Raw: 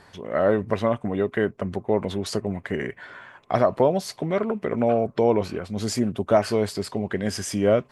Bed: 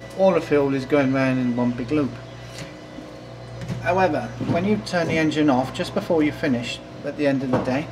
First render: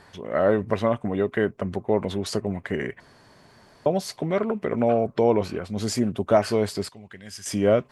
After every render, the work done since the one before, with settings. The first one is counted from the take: 3.00–3.86 s: room tone; 6.89–7.46 s: amplifier tone stack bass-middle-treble 5-5-5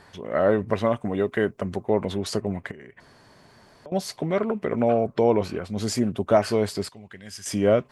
0.85–1.90 s: tone controls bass -1 dB, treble +5 dB; 2.71–3.92 s: compression 5:1, threshold -42 dBFS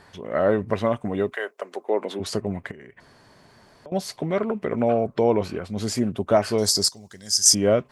1.32–2.19 s: high-pass 600 Hz -> 240 Hz 24 dB/octave; 6.58–7.55 s: resonant high shelf 3.8 kHz +13.5 dB, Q 3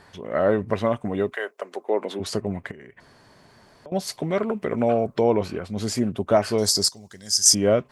4.07–5.21 s: treble shelf 5 kHz +7 dB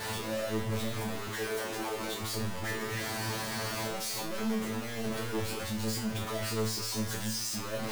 one-bit comparator; feedback comb 110 Hz, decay 0.37 s, harmonics all, mix 100%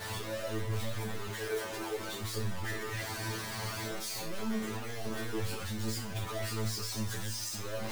chorus voices 4, 0.79 Hz, delay 11 ms, depth 1.4 ms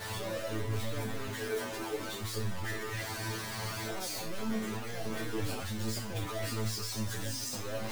add bed -26 dB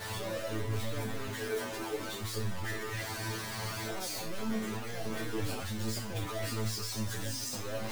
no audible change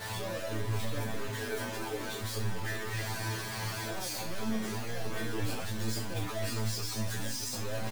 doubling 17 ms -8 dB; delay 626 ms -10.5 dB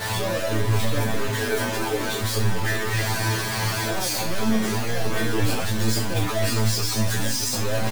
trim +11.5 dB

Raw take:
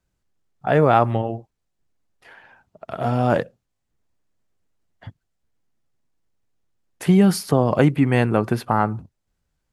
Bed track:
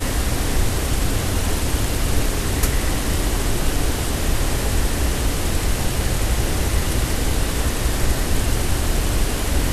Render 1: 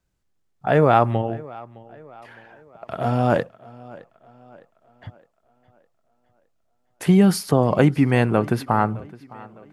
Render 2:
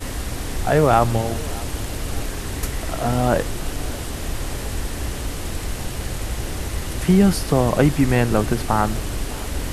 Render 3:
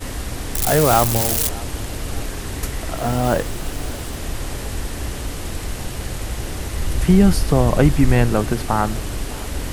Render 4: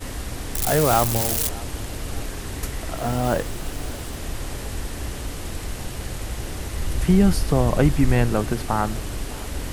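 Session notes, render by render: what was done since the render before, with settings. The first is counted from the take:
tape echo 611 ms, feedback 50%, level -20 dB, low-pass 5.9 kHz
add bed track -6.5 dB
0.55–1.49 s: zero-crossing glitches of -9.5 dBFS; 2.97–4.19 s: block-companded coder 5-bit; 6.79–8.30 s: bass shelf 82 Hz +10.5 dB
trim -3.5 dB

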